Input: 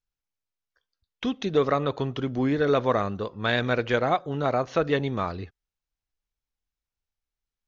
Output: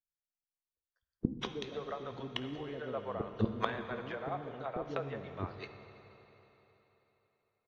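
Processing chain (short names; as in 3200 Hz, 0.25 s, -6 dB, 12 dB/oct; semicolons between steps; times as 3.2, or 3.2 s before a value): treble ducked by the level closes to 1300 Hz, closed at -18.5 dBFS; gate -34 dBFS, range -27 dB; 1.43–2.12 tone controls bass -8 dB, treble +2 dB; harmonic-percussive split harmonic -6 dB; dynamic EQ 390 Hz, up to +3 dB, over -37 dBFS, Q 0.74; flipped gate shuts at -26 dBFS, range -26 dB; in parallel at -10 dB: one-sided clip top -38.5 dBFS; on the sum: bands offset in time lows, highs 0.2 s, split 430 Hz; on a send at -7 dB: reverb RT60 3.8 s, pre-delay 4 ms; on the sum: gain +10 dB; AAC 48 kbps 44100 Hz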